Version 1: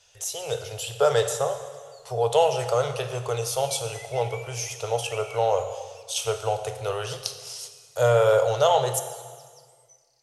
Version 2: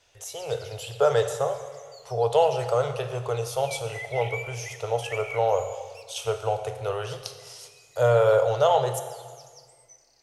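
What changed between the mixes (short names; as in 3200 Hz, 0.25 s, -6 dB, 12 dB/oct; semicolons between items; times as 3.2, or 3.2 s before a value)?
background +11.0 dB; master: add bell 8100 Hz -8 dB 2.6 oct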